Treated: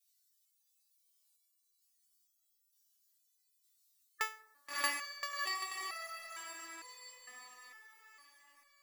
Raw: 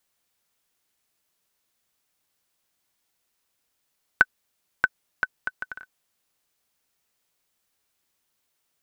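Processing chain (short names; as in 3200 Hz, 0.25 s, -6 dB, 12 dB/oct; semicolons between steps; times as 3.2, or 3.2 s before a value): median filter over 9 samples; spectral gate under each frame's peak -15 dB weak; tilt +3.5 dB/oct; in parallel at +1.5 dB: limiter -15.5 dBFS, peak gain reduction 8 dB; on the sum: diffused feedback echo 0.645 s, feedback 46%, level -5 dB; harmonic-percussive split percussive -10 dB; on a send at -16 dB: reverb RT60 1.1 s, pre-delay 4 ms; on the sum: stepped resonator 2.2 Hz 250–660 Hz; gain +14.5 dB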